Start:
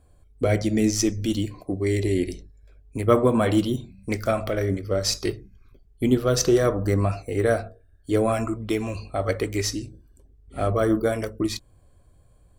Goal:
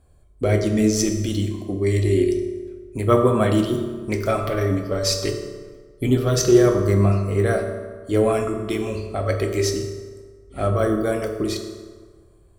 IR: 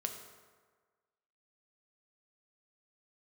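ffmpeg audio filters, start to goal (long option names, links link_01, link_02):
-filter_complex "[0:a]asettb=1/sr,asplit=3[link_01][link_02][link_03];[link_01]atrim=end=4.314[link_04];[link_02]atrim=start=4.31:end=6.36,asetpts=PTS-STARTPTS,afade=type=in:duration=0.004:curve=qsin,afade=type=out:start_time=2.046:duration=0.004:curve=qsin,aecho=1:1:6.9:0.59,atrim=end_sample=90405[link_05];[link_03]atrim=start=6.356[link_06];[link_04][link_05]acrossfade=duration=0.004:curve1=hsin:curve2=qsin[link_07];[link_07][link_06]acrossfade=duration=0.004:curve1=qsin:curve2=hsin[link_08];[1:a]atrim=start_sample=2205,asetrate=40131,aresample=44100[link_09];[link_08][link_09]afir=irnorm=-1:irlink=0,volume=1dB"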